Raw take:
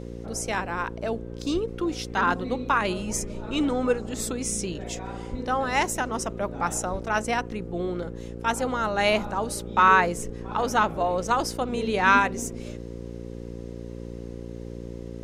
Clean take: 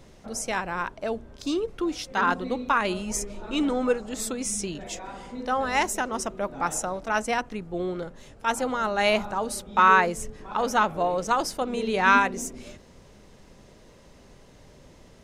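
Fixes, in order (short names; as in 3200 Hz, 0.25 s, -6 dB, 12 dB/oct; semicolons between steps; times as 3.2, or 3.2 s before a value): de-hum 58.5 Hz, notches 9; 1.53–1.65 HPF 140 Hz 24 dB/oct; 5.3–5.42 HPF 140 Hz 24 dB/oct; 6.91–7.03 HPF 140 Hz 24 dB/oct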